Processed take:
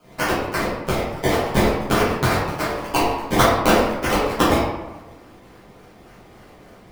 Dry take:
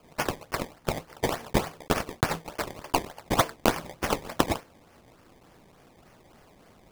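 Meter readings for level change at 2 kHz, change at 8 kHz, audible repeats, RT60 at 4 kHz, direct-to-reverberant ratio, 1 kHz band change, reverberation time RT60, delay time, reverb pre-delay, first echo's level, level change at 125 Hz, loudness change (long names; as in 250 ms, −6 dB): +10.0 dB, +6.0 dB, no echo audible, 0.60 s, −11.0 dB, +9.5 dB, 1.1 s, no echo audible, 7 ms, no echo audible, +10.0 dB, +9.5 dB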